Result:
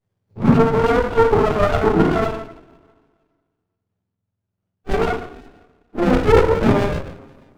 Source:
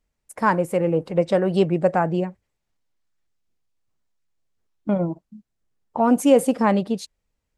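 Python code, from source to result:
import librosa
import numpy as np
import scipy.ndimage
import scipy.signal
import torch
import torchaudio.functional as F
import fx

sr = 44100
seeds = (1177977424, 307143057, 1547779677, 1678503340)

y = fx.octave_mirror(x, sr, pivot_hz=490.0)
y = y + 10.0 ** (-15.5 / 20.0) * np.pad(y, (int(150 * sr / 1000.0), 0))[:len(y)]
y = fx.rev_double_slope(y, sr, seeds[0], early_s=0.57, late_s=1.8, knee_db=-19, drr_db=-9.5)
y = fx.running_max(y, sr, window=33)
y = y * librosa.db_to_amplitude(-2.0)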